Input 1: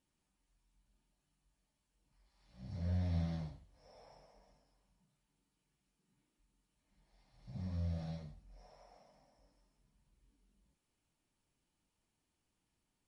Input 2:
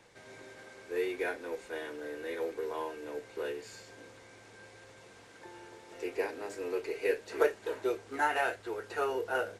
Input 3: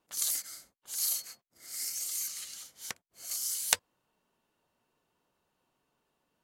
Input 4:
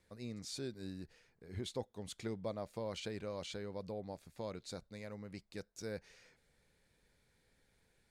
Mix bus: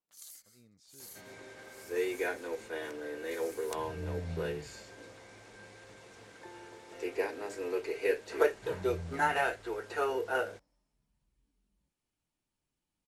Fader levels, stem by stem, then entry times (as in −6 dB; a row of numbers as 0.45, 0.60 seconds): −3.5, +0.5, −19.5, −17.5 decibels; 1.15, 1.00, 0.00, 0.35 seconds